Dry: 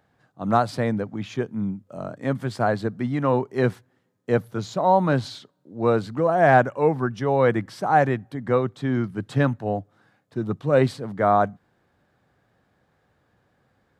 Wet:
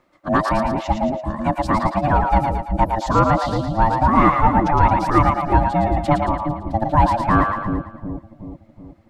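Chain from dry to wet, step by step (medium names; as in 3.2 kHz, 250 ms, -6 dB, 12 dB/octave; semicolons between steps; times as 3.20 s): reverb removal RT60 1.9 s; dynamic bell 370 Hz, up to +7 dB, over -33 dBFS, Q 1; in parallel at +0.5 dB: compression, threshold -27 dBFS, peak gain reduction 17 dB; on the sum: ring modulator 440 Hz; saturation -4 dBFS, distortion -23 dB; time stretch by phase-locked vocoder 0.65×; two-band feedback delay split 530 Hz, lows 373 ms, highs 112 ms, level -4 dB; trim +3 dB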